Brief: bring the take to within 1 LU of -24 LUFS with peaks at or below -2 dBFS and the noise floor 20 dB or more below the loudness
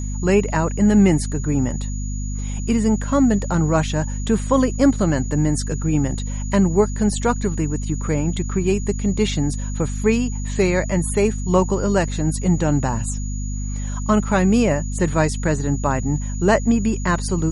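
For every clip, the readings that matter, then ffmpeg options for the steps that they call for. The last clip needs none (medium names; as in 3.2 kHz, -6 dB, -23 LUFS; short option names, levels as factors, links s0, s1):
hum 50 Hz; highest harmonic 250 Hz; hum level -23 dBFS; steady tone 6.8 kHz; tone level -36 dBFS; loudness -20.5 LUFS; peak level -3.5 dBFS; loudness target -24.0 LUFS
-> -af "bandreject=f=50:t=h:w=4,bandreject=f=100:t=h:w=4,bandreject=f=150:t=h:w=4,bandreject=f=200:t=h:w=4,bandreject=f=250:t=h:w=4"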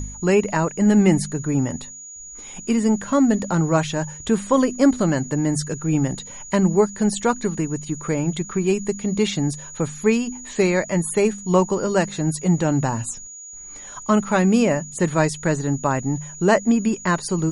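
hum not found; steady tone 6.8 kHz; tone level -36 dBFS
-> -af "bandreject=f=6800:w=30"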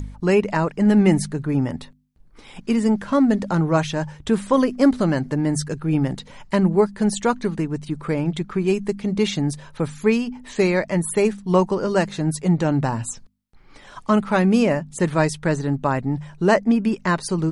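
steady tone not found; loudness -21.0 LUFS; peak level -3.5 dBFS; loudness target -24.0 LUFS
-> -af "volume=0.708"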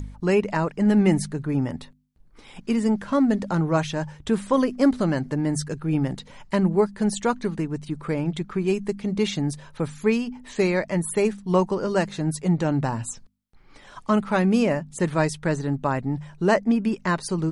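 loudness -24.0 LUFS; peak level -6.5 dBFS; noise floor -51 dBFS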